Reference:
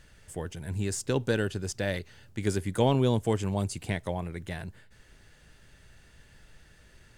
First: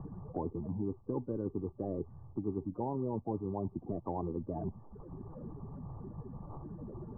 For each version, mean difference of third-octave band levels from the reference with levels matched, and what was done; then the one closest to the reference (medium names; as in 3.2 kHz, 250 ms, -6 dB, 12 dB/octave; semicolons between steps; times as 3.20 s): 15.0 dB: coarse spectral quantiser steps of 30 dB; reverse; compression 6:1, threshold -37 dBFS, peak gain reduction 17 dB; reverse; rippled Chebyshev low-pass 1.2 kHz, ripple 6 dB; three bands compressed up and down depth 70%; trim +7 dB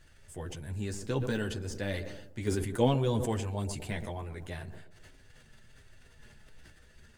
3.0 dB: de-esser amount 85%; chorus voices 6, 0.33 Hz, delay 11 ms, depth 3.4 ms; tape echo 125 ms, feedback 68%, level -14 dB, low-pass 1 kHz; decay stretcher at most 48 dB/s; trim -1.5 dB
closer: second